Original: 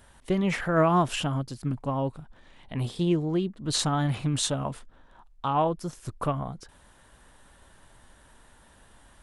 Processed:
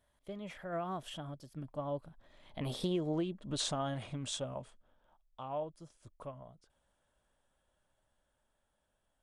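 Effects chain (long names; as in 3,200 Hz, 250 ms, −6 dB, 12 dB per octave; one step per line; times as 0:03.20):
source passing by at 0:03.07, 18 m/s, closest 3 metres
dynamic equaliser 100 Hz, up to −7 dB, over −46 dBFS, Q 0.78
downward compressor 5 to 1, threshold −37 dBFS, peak gain reduction 13 dB
hollow resonant body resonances 600/3,300 Hz, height 9 dB, ringing for 25 ms
level +4.5 dB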